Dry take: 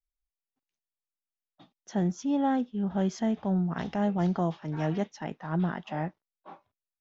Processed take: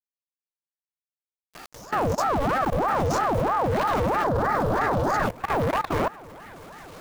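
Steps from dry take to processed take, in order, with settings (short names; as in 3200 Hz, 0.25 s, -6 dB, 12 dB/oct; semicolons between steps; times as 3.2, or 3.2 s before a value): spectral swells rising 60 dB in 0.36 s; in parallel at +1 dB: compressor 12:1, threshold -36 dBFS, peak gain reduction 14 dB; 2.1–3.71 on the sum: low shelf 170 Hz +11.5 dB; on a send: repeats that get brighter 0.161 s, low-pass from 750 Hz, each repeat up 1 oct, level -6 dB; on the sum: requantised 8-bit, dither none; power-law curve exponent 0.5; 4.24–5.26 graphic EQ 250/1000/2000/4000 Hz +10/+9/-9/+4 dB; level quantiser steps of 20 dB; ring modulator with a swept carrier 670 Hz, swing 60%, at 3.1 Hz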